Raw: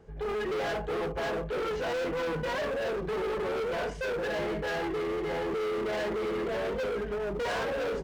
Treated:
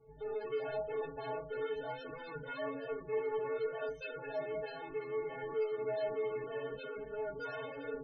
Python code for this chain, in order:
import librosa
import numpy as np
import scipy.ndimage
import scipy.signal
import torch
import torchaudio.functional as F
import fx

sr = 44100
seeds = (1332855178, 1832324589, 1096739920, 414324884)

y = fx.stiff_resonator(x, sr, f0_hz=130.0, decay_s=0.37, stiffness=0.03)
y = fx.spec_topn(y, sr, count=32)
y = y * 10.0 ** (3.0 / 20.0)